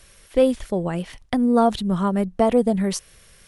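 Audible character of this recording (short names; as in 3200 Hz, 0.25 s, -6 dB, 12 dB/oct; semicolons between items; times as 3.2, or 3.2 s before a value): noise floor -52 dBFS; spectral tilt -6.5 dB/oct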